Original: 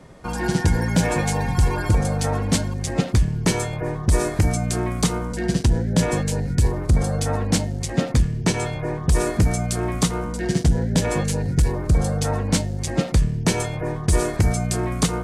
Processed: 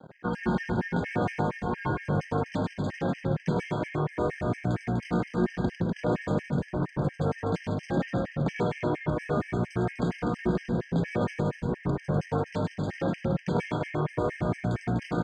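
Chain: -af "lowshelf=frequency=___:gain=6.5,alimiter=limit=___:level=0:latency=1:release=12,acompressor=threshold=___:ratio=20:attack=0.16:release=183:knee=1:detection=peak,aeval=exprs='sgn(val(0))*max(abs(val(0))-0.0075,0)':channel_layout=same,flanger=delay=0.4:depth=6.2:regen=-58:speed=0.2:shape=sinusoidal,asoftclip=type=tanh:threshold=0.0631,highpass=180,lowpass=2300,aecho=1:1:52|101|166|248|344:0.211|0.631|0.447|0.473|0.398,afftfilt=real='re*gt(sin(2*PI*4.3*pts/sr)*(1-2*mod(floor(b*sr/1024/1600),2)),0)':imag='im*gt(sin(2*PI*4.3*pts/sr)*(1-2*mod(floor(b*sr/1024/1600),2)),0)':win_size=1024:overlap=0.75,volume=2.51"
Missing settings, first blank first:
240, 0.355, 0.126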